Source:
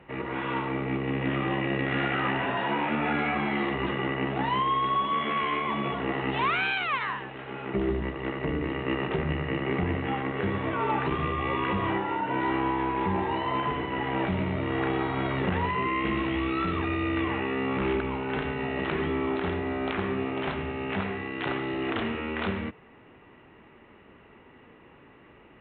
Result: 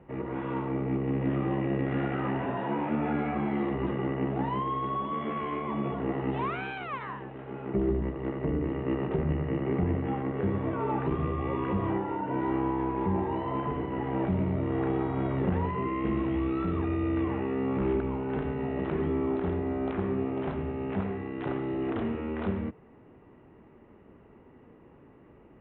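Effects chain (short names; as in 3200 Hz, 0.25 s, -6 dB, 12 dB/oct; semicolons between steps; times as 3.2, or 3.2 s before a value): tilt shelf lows +10 dB, about 1400 Hz; gain -8.5 dB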